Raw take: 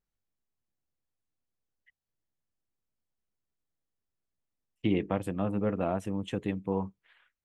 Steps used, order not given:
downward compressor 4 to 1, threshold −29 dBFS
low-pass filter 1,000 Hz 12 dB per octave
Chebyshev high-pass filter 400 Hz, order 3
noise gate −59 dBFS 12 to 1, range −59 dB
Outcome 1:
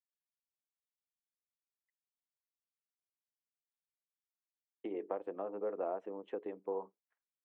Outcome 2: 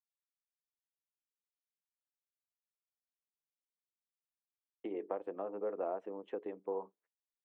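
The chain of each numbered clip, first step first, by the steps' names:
downward compressor, then Chebyshev high-pass filter, then noise gate, then low-pass filter
downward compressor, then low-pass filter, then noise gate, then Chebyshev high-pass filter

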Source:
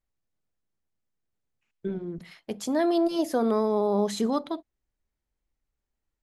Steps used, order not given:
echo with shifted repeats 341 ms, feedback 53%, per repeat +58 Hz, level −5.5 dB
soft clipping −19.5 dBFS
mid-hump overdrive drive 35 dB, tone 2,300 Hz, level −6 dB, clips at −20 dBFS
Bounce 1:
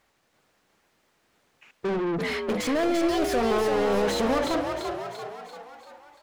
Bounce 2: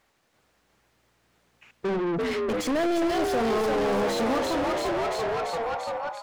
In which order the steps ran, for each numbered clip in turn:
soft clipping, then mid-hump overdrive, then echo with shifted repeats
soft clipping, then echo with shifted repeats, then mid-hump overdrive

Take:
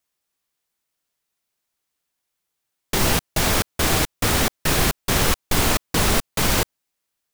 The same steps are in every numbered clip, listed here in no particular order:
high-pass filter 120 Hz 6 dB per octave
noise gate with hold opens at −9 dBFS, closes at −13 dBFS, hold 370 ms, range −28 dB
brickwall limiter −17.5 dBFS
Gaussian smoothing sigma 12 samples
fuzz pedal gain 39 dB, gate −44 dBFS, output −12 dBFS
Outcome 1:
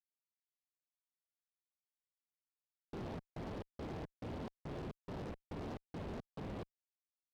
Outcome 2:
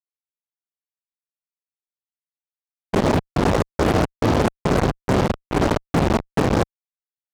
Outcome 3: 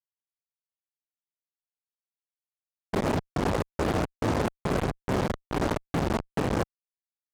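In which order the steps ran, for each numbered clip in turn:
high-pass filter, then brickwall limiter, then Gaussian smoothing, then fuzz pedal, then noise gate with hold
Gaussian smoothing, then brickwall limiter, then fuzz pedal, then high-pass filter, then noise gate with hold
Gaussian smoothing, then fuzz pedal, then high-pass filter, then noise gate with hold, then brickwall limiter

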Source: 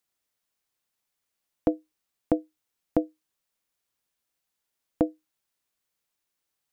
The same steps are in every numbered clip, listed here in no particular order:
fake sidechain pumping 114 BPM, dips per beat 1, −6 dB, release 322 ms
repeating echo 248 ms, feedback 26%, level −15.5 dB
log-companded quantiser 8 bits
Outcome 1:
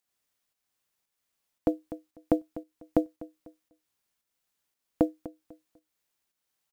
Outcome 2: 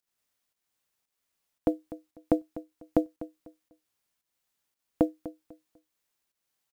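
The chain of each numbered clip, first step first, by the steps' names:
repeating echo, then log-companded quantiser, then fake sidechain pumping
fake sidechain pumping, then repeating echo, then log-companded quantiser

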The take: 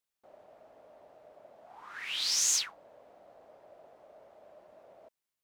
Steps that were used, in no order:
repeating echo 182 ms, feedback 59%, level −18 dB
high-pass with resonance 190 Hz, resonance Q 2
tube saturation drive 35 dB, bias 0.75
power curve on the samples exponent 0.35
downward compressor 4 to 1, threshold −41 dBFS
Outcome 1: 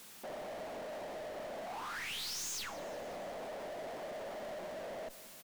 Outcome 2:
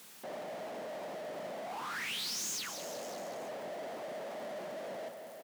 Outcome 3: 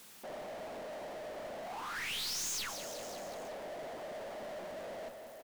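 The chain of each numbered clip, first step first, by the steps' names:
high-pass with resonance, then tube saturation, then power curve on the samples, then downward compressor, then repeating echo
downward compressor, then tube saturation, then repeating echo, then power curve on the samples, then high-pass with resonance
high-pass with resonance, then tube saturation, then downward compressor, then repeating echo, then power curve on the samples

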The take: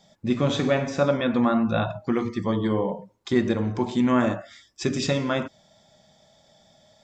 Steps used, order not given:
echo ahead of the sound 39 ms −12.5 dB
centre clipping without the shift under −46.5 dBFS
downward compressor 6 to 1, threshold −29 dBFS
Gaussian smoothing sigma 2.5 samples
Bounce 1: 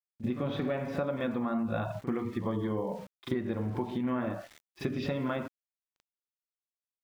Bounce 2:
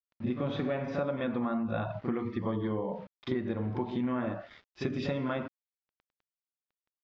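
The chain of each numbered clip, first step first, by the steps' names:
Gaussian smoothing, then centre clipping without the shift, then downward compressor, then echo ahead of the sound
echo ahead of the sound, then centre clipping without the shift, then Gaussian smoothing, then downward compressor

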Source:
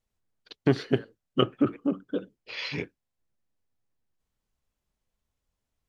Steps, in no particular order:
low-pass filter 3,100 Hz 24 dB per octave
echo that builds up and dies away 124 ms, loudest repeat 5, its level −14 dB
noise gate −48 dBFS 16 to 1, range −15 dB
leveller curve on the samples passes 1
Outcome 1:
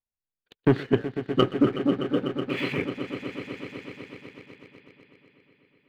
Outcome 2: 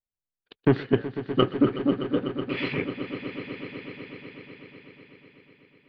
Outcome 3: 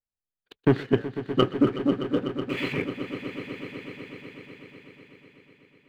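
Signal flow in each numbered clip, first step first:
low-pass filter, then noise gate, then echo that builds up and dies away, then leveller curve on the samples
leveller curve on the samples, then low-pass filter, then noise gate, then echo that builds up and dies away
noise gate, then low-pass filter, then leveller curve on the samples, then echo that builds up and dies away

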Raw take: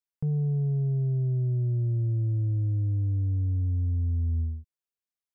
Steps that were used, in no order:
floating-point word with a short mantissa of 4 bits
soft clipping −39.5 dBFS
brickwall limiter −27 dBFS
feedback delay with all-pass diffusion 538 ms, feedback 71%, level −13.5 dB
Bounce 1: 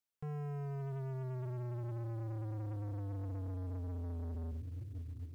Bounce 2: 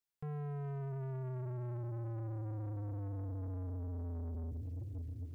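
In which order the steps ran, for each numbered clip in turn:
brickwall limiter, then feedback delay with all-pass diffusion, then soft clipping, then floating-point word with a short mantissa
feedback delay with all-pass diffusion, then floating-point word with a short mantissa, then brickwall limiter, then soft clipping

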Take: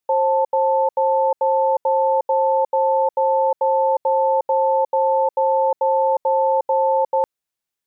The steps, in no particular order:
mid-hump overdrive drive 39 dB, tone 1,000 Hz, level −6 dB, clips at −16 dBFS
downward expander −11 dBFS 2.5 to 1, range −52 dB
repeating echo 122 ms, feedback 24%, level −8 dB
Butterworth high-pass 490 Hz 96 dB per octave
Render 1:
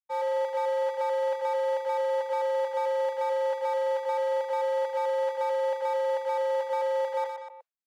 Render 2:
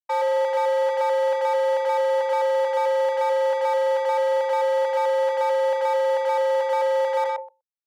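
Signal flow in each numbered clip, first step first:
repeating echo, then mid-hump overdrive, then Butterworth high-pass, then downward expander
repeating echo, then downward expander, then mid-hump overdrive, then Butterworth high-pass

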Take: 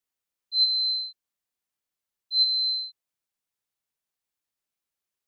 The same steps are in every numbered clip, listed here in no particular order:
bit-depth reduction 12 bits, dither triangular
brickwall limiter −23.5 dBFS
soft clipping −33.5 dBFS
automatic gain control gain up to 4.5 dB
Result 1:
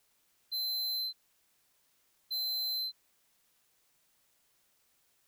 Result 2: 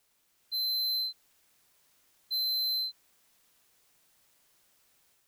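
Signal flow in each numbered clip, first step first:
brickwall limiter, then automatic gain control, then bit-depth reduction, then soft clipping
brickwall limiter, then soft clipping, then bit-depth reduction, then automatic gain control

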